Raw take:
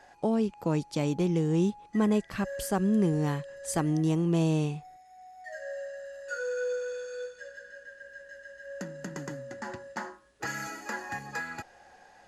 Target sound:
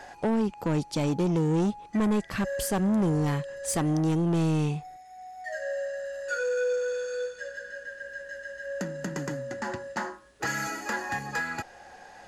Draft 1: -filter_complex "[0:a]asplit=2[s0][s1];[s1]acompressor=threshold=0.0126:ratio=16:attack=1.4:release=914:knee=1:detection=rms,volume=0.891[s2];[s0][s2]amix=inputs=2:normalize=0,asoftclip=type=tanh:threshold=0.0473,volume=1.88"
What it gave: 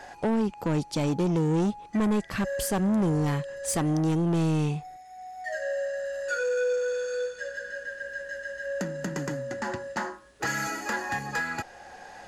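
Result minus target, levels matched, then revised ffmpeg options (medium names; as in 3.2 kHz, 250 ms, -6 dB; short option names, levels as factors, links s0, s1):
compression: peak gain reduction -11 dB
-filter_complex "[0:a]asplit=2[s0][s1];[s1]acompressor=threshold=0.00335:ratio=16:attack=1.4:release=914:knee=1:detection=rms,volume=0.891[s2];[s0][s2]amix=inputs=2:normalize=0,asoftclip=type=tanh:threshold=0.0473,volume=1.88"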